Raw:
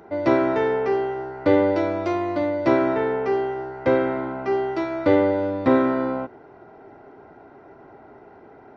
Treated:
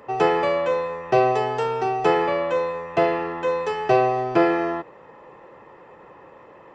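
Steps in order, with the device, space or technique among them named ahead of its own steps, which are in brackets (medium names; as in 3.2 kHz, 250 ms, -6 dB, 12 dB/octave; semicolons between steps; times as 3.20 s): nightcore (tape speed +30%)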